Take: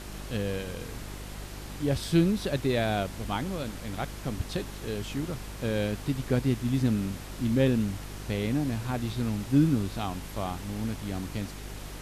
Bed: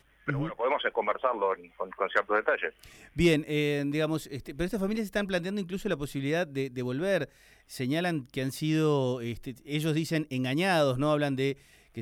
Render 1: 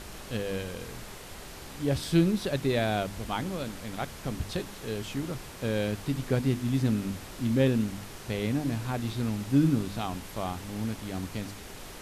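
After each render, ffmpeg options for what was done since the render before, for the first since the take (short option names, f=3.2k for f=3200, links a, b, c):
-af "bandreject=f=50:t=h:w=4,bandreject=f=100:t=h:w=4,bandreject=f=150:t=h:w=4,bandreject=f=200:t=h:w=4,bandreject=f=250:t=h:w=4,bandreject=f=300:t=h:w=4,bandreject=f=350:t=h:w=4"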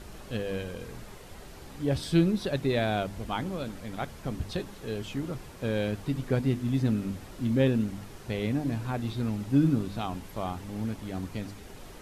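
-af "afftdn=nr=7:nf=-44"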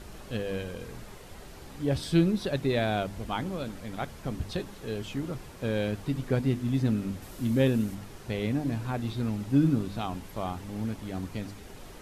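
-filter_complex "[0:a]asettb=1/sr,asplit=3[a][b][c];[a]atrim=end=7.224[d];[b]atrim=start=7.22:end=7.95,asetpts=PTS-STARTPTS,afade=t=in:d=0.004:c=qsin,afade=t=out:st=0.726:d=0.004:c=qsin,highshelf=f=8.2k:g=10.5[e];[c]atrim=start=7.946[f];[d][e]acrossfade=d=0.004:c1=hsin:c2=qsin[g];[g][f]acrossfade=d=0.004:c1=qsin:c2=hsin"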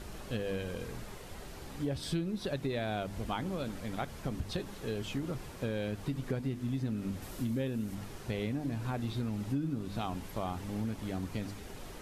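-af "acompressor=threshold=-31dB:ratio=6"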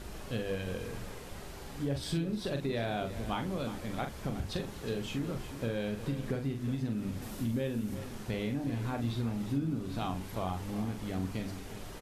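-filter_complex "[0:a]asplit=2[a][b];[b]adelay=43,volume=-6.5dB[c];[a][c]amix=inputs=2:normalize=0,aecho=1:1:362:0.237"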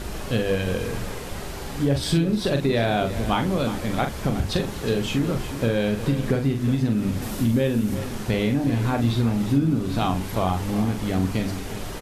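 -af "volume=12dB"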